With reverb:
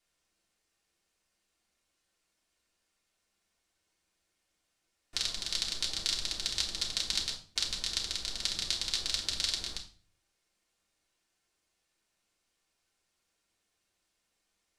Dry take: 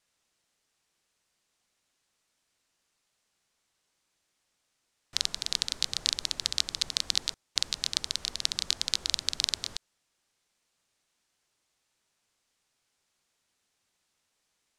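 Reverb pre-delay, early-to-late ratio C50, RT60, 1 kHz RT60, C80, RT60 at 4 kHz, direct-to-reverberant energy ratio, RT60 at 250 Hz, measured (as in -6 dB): 3 ms, 10.0 dB, 0.40 s, 0.40 s, 14.5 dB, 0.35 s, -4.0 dB, 0.60 s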